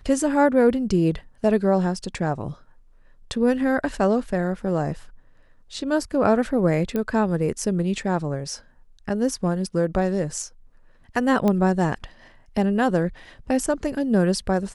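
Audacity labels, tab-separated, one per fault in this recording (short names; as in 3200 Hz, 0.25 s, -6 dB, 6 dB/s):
6.960000	6.960000	pop -14 dBFS
11.480000	11.480000	pop -11 dBFS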